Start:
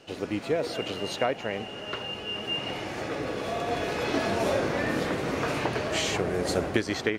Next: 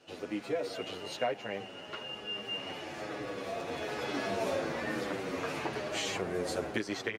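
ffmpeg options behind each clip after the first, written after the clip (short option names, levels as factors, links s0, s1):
-filter_complex "[0:a]lowshelf=f=110:g=-10.5,asplit=2[s0][s1];[s1]adelay=8.7,afreqshift=-1.1[s2];[s0][s2]amix=inputs=2:normalize=1,volume=0.668"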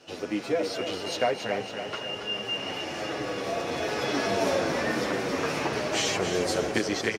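-af "equalizer=f=5500:w=3.7:g=6.5,aecho=1:1:277|554|831|1108|1385|1662|1939:0.398|0.219|0.12|0.0662|0.0364|0.02|0.011,volume=2.11"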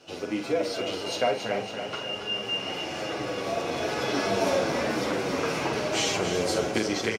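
-filter_complex "[0:a]bandreject=f=1800:w=11,asplit=2[s0][s1];[s1]adelay=46,volume=0.398[s2];[s0][s2]amix=inputs=2:normalize=0"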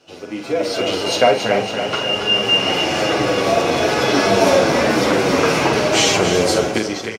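-af "dynaudnorm=f=140:g=9:m=5.62"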